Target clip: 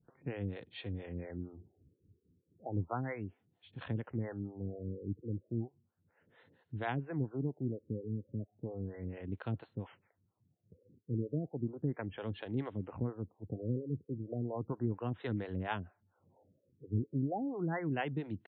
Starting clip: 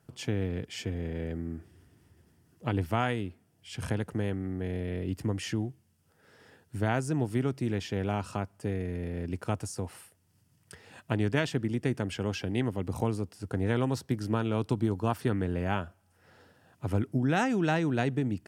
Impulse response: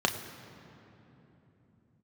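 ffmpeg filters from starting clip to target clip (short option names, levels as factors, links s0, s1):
-filter_complex "[0:a]asetrate=46722,aresample=44100,atempo=0.943874,acrossover=split=410[s0][s1];[s0]aeval=exprs='val(0)*(1-1/2+1/2*cos(2*PI*4.3*n/s))':c=same[s2];[s1]aeval=exprs='val(0)*(1-1/2-1/2*cos(2*PI*4.3*n/s))':c=same[s3];[s2][s3]amix=inputs=2:normalize=0,afftfilt=real='re*lt(b*sr/1024,510*pow(4500/510,0.5+0.5*sin(2*PI*0.34*pts/sr)))':imag='im*lt(b*sr/1024,510*pow(4500/510,0.5+0.5*sin(2*PI*0.34*pts/sr)))':win_size=1024:overlap=0.75,volume=0.708"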